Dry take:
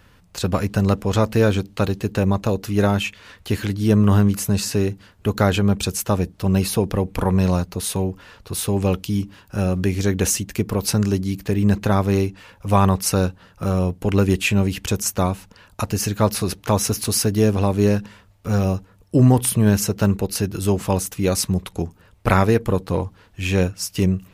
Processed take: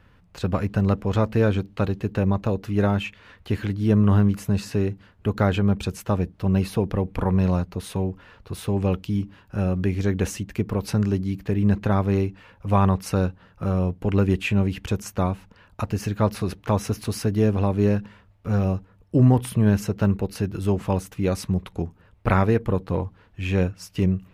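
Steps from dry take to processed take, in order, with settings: tone controls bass +2 dB, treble -12 dB; gain -4 dB

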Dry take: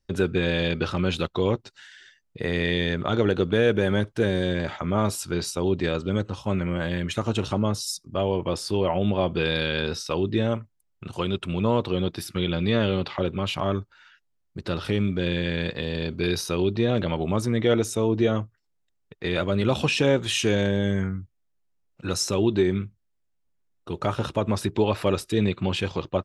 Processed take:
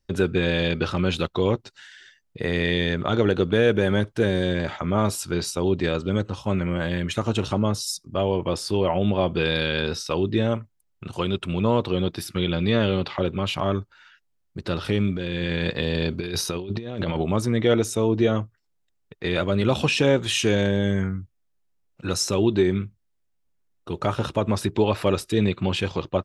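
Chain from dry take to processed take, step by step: 15.17–17.22 negative-ratio compressor -27 dBFS, ratio -0.5; gain +1.5 dB

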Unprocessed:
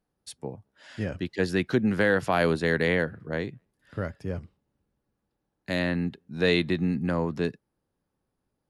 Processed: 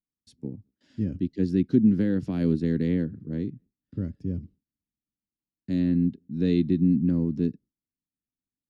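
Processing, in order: gate with hold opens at -47 dBFS; EQ curve 140 Hz 0 dB, 270 Hz +6 dB, 680 Hz -22 dB, 1200 Hz -24 dB, 5500 Hz -13 dB, 9700 Hz -22 dB; gain +2 dB

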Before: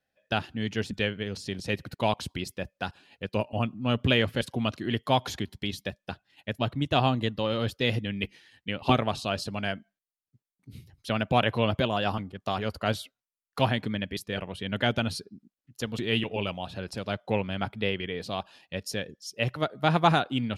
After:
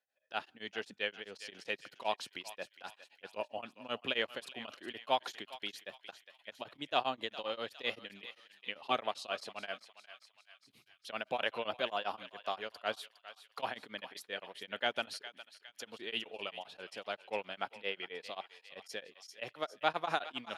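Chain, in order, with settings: HPF 510 Hz 12 dB/oct; high shelf 9700 Hz -6 dB; thinning echo 0.41 s, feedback 56%, high-pass 1100 Hz, level -12.5 dB; beating tremolo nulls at 7.6 Hz; gain -4.5 dB

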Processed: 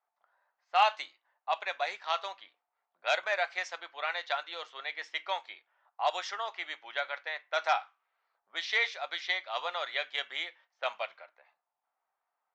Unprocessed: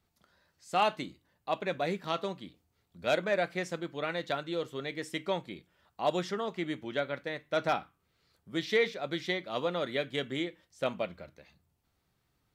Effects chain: low-pass opened by the level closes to 1000 Hz, open at -27.5 dBFS; Chebyshev band-pass 760–6300 Hz, order 3; gain +4 dB

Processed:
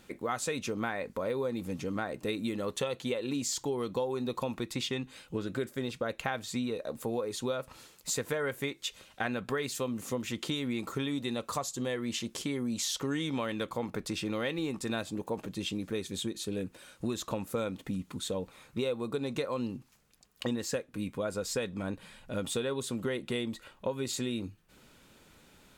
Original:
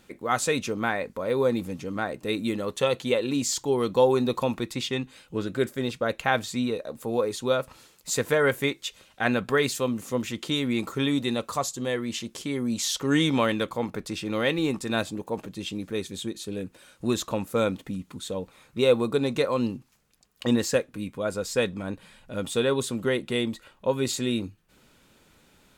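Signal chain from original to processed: compressor 6:1, threshold -30 dBFS, peak gain reduction 14.5 dB

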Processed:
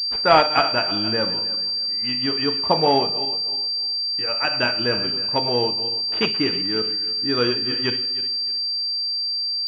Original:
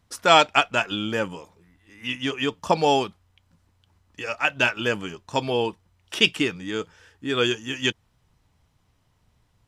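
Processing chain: regenerating reverse delay 0.155 s, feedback 52%, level -12 dB; Schroeder reverb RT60 0.38 s, combs from 25 ms, DRR 9.5 dB; pulse-width modulation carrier 4700 Hz; gain +1 dB

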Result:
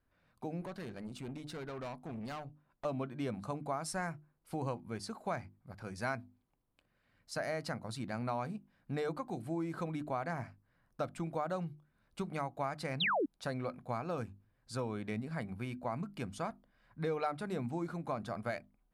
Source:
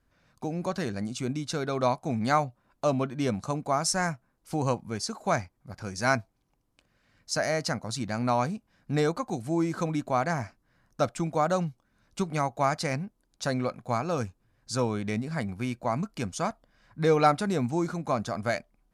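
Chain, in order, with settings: bell 6200 Hz -12 dB 0.75 oct; notches 50/100/150/200/250/300/350 Hz; compressor 3:1, threshold -27 dBFS, peak gain reduction 8.5 dB; 0.61–2.85 tube stage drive 32 dB, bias 0.45; 13–13.26 painted sound fall 250–4200 Hz -25 dBFS; gain -6.5 dB

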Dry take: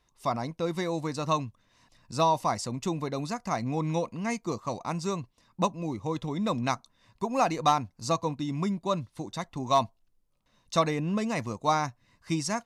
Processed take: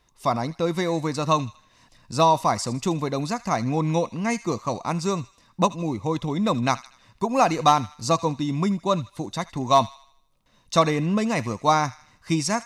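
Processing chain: thin delay 79 ms, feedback 45%, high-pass 1600 Hz, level -15 dB; gain +6 dB

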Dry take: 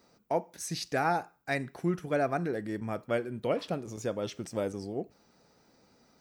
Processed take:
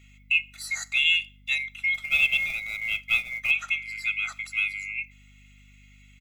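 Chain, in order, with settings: band-swap scrambler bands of 2000 Hz; HPF 1100 Hz 24 dB/oct; 1.94–3.51 short-mantissa float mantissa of 2-bit; tilt -2.5 dB/oct; comb 1.5 ms, depth 98%; hum 50 Hz, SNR 26 dB; gain +5.5 dB

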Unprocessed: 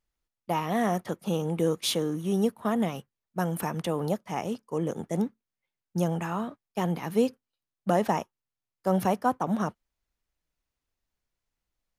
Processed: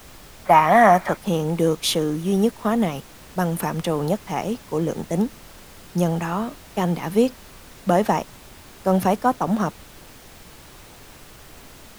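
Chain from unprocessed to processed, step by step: added noise pink -50 dBFS; spectral gain 0.46–1.17, 550–2500 Hz +10 dB; gain +6 dB

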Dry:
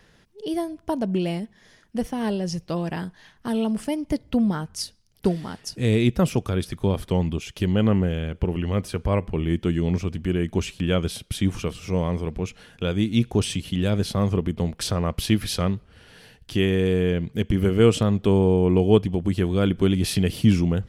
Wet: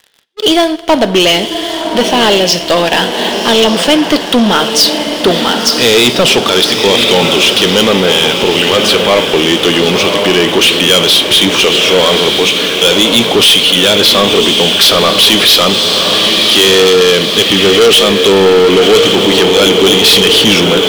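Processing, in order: on a send: diffused feedback echo 1.089 s, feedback 58%, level -9.5 dB; on the sum: soft clip -7 dBFS, distortion -23 dB; bell 3400 Hz +13 dB 0.81 oct; in parallel at -2 dB: limiter -15.5 dBFS, peak gain reduction 9.5 dB; on the sum: BPF 440–7000 Hz; sample leveller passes 3; two-slope reverb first 0.56 s, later 4.2 s, from -18 dB, DRR 12.5 dB; sample leveller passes 2; gain +1 dB

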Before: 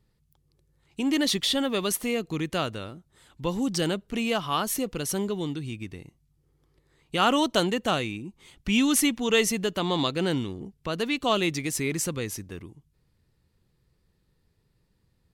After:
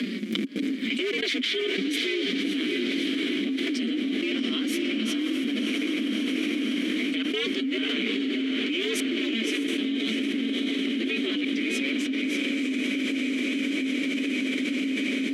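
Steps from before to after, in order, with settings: cycle switcher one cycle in 2, inverted; steep high-pass 190 Hz 96 dB/oct; gate with hold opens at -56 dBFS; upward compressor, threshold -31 dBFS; flange 0.15 Hz, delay 4.8 ms, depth 9.7 ms, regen +1%; step gate "xxxx.xxxxx." 135 bpm -24 dB; vowel filter i; diffused feedback echo 0.635 s, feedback 61%, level -5.5 dB; fast leveller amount 100%; gain +3.5 dB

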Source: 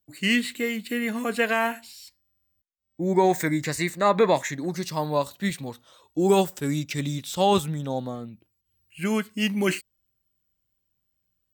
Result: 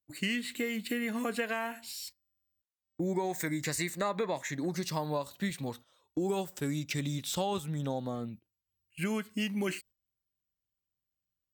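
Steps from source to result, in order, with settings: 1.87–4.25 bell 13000 Hz +5.5 dB 2.2 oct; gate -46 dBFS, range -14 dB; compressor 6:1, threshold -30 dBFS, peak gain reduction 14.5 dB

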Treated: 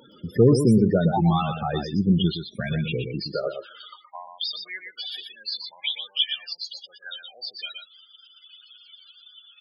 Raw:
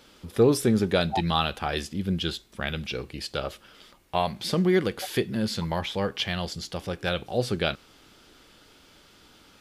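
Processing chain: in parallel at -2.5 dB: limiter -18 dBFS, peak gain reduction 9.5 dB; on the sum: vibrato 3.6 Hz 12 cents; loudest bins only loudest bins 16; high-pass sweep 130 Hz -> 3000 Hz, 3.12–4.29; on a send: echo 0.12 s -7.5 dB; on the sum: mismatched tape noise reduction encoder only; gain -1.5 dB

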